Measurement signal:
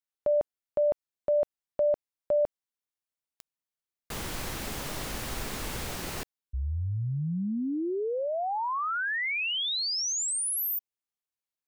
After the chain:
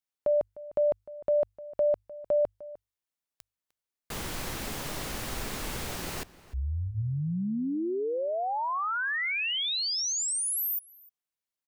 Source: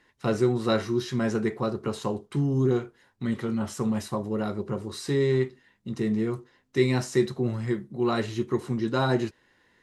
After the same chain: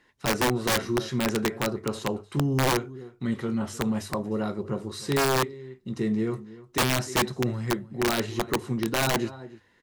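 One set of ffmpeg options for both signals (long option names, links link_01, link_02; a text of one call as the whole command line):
ffmpeg -i in.wav -filter_complex "[0:a]bandreject=frequency=50:width_type=h:width=6,bandreject=frequency=100:width_type=h:width=6,asplit=2[link_01][link_02];[link_02]adelay=303.2,volume=-18dB,highshelf=frequency=4000:gain=-6.82[link_03];[link_01][link_03]amix=inputs=2:normalize=0,aeval=exprs='(mod(7.08*val(0)+1,2)-1)/7.08':channel_layout=same" out.wav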